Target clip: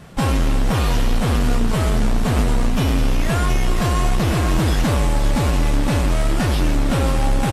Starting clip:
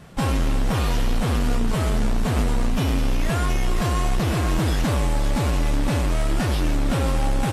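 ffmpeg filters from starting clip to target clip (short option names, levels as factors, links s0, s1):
-af "aecho=1:1:698|1396|2094|2792|3490:0.141|0.0777|0.0427|0.0235|0.0129,volume=1.5"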